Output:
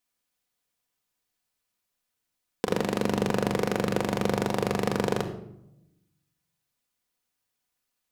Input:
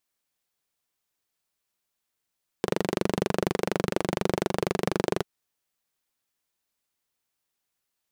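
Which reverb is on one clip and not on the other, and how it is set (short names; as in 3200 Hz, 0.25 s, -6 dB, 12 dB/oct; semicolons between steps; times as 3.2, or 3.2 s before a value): shoebox room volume 2500 m³, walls furnished, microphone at 1.9 m; gain -1 dB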